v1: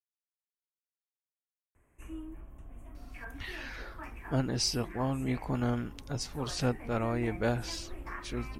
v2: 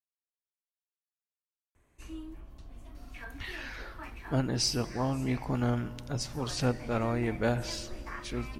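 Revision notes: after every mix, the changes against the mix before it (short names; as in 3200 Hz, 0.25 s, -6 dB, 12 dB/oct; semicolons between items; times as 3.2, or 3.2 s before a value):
background: remove Butterworth band-stop 4500 Hz, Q 0.91; reverb: on, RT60 2.5 s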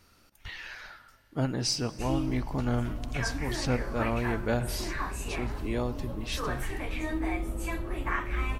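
speech: entry -2.95 s; background +11.0 dB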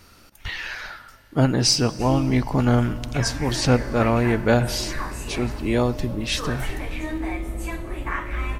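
speech +10.5 dB; background: send on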